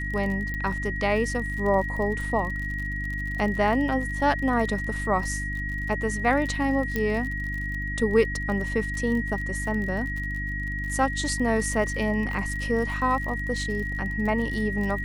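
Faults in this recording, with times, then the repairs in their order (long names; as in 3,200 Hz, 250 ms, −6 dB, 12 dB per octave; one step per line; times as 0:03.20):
surface crackle 41 per second −32 dBFS
mains hum 50 Hz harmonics 6 −32 dBFS
whistle 1,900 Hz −31 dBFS
0:00.54: click −20 dBFS
0:06.96: click −13 dBFS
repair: click removal
hum removal 50 Hz, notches 6
notch filter 1,900 Hz, Q 30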